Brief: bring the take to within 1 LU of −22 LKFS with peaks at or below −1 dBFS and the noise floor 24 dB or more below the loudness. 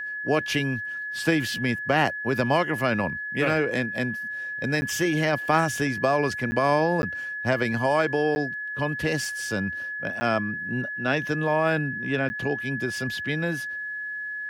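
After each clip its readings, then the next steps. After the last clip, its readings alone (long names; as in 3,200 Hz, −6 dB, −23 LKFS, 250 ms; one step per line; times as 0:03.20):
number of dropouts 6; longest dropout 10 ms; interfering tone 1,700 Hz; level of the tone −30 dBFS; integrated loudness −25.5 LKFS; sample peak −7.5 dBFS; target loudness −22.0 LKFS
→ repair the gap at 0:04.81/0:06.51/0:07.02/0:08.35/0:10.20/0:12.29, 10 ms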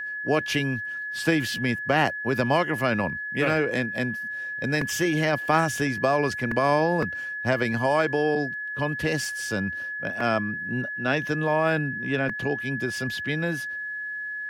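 number of dropouts 0; interfering tone 1,700 Hz; level of the tone −30 dBFS
→ notch filter 1,700 Hz, Q 30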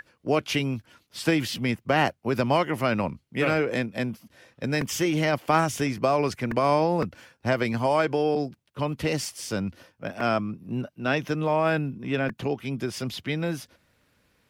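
interfering tone none found; integrated loudness −26.5 LKFS; sample peak −7.5 dBFS; target loudness −22.0 LKFS
→ level +4.5 dB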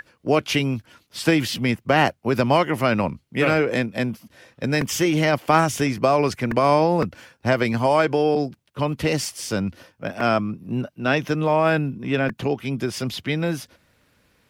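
integrated loudness −22.0 LKFS; sample peak −3.0 dBFS; background noise floor −65 dBFS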